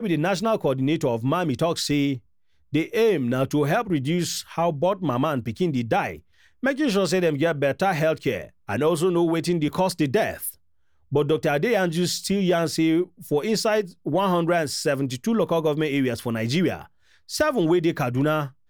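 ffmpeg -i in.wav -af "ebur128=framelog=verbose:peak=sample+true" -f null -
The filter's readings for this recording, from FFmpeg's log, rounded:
Integrated loudness:
  I:         -23.3 LUFS
  Threshold: -33.5 LUFS
Loudness range:
  LRA:         1.4 LU
  Threshold: -43.6 LUFS
  LRA low:   -24.2 LUFS
  LRA high:  -22.9 LUFS
Sample peak:
  Peak:      -10.2 dBFS
True peak:
  Peak:      -10.2 dBFS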